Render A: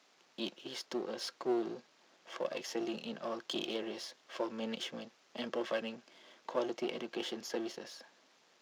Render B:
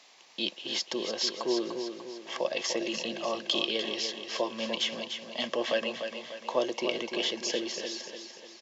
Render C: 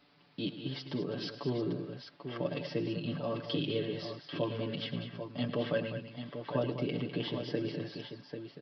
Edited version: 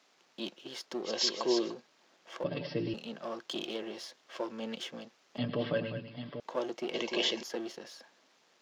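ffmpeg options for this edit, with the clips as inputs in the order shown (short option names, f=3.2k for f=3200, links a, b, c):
-filter_complex "[1:a]asplit=2[a][b];[2:a]asplit=2[c][d];[0:a]asplit=5[e][f][g][h][i];[e]atrim=end=1.13[j];[a]atrim=start=1.03:end=1.75[k];[f]atrim=start=1.65:end=2.442[l];[c]atrim=start=2.438:end=2.942[m];[g]atrim=start=2.938:end=5.382[n];[d]atrim=start=5.378:end=6.402[o];[h]atrim=start=6.398:end=6.942[p];[b]atrim=start=6.938:end=7.432[q];[i]atrim=start=7.428[r];[j][k]acrossfade=d=0.1:c1=tri:c2=tri[s];[s][l]acrossfade=d=0.1:c1=tri:c2=tri[t];[t][m]acrossfade=d=0.004:c1=hsin:c2=hsin[u];[u][n]acrossfade=d=0.004:c1=hsin:c2=hsin[v];[v][o]acrossfade=d=0.004:c1=hsin:c2=hsin[w];[w][p]acrossfade=d=0.004:c1=hsin:c2=hsin[x];[x][q]acrossfade=d=0.004:c1=hsin:c2=hsin[y];[y][r]acrossfade=d=0.004:c1=hsin:c2=hsin"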